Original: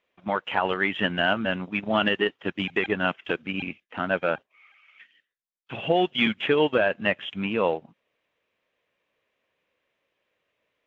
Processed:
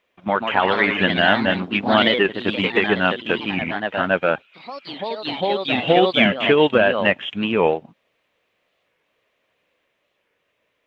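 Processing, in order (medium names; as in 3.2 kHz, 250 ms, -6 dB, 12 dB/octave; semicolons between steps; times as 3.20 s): ever faster or slower copies 171 ms, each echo +2 st, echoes 3, each echo -6 dB; warped record 45 rpm, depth 160 cents; trim +6 dB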